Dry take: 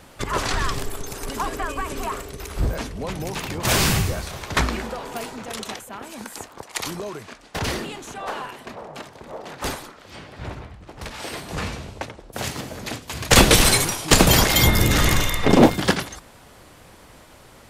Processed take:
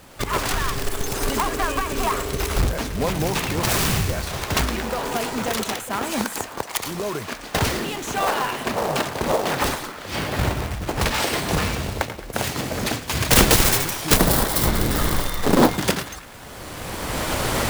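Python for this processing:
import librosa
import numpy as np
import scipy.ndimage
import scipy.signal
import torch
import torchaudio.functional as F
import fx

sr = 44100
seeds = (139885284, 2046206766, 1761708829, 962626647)

p1 = fx.self_delay(x, sr, depth_ms=0.4)
p2 = fx.recorder_agc(p1, sr, target_db=-11.5, rise_db_per_s=19.0, max_gain_db=30)
p3 = fx.graphic_eq_15(p2, sr, hz=(100, 2500, 6300), db=(-7, -11, -7), at=(14.17, 15.69))
p4 = p3 + fx.echo_banded(p3, sr, ms=109, feedback_pct=72, hz=1800.0, wet_db=-14.5, dry=0)
p5 = fx.quant_companded(p4, sr, bits=4)
y = F.gain(torch.from_numpy(p5), -1.0).numpy()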